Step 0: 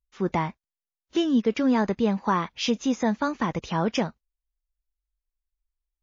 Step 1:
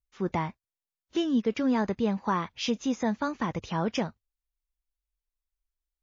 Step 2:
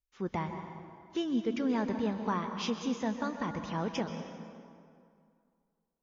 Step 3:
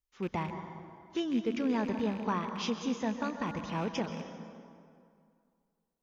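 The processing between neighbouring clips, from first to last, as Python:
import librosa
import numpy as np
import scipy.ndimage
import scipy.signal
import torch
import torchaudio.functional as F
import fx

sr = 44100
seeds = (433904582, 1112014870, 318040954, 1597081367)

y1 = fx.peak_eq(x, sr, hz=100.0, db=8.5, octaves=0.46)
y1 = F.gain(torch.from_numpy(y1), -4.0).numpy()
y2 = fx.rev_plate(y1, sr, seeds[0], rt60_s=2.3, hf_ratio=0.65, predelay_ms=115, drr_db=6.5)
y2 = F.gain(torch.from_numpy(y2), -5.5).numpy()
y3 = fx.rattle_buzz(y2, sr, strikes_db=-38.0, level_db=-37.0)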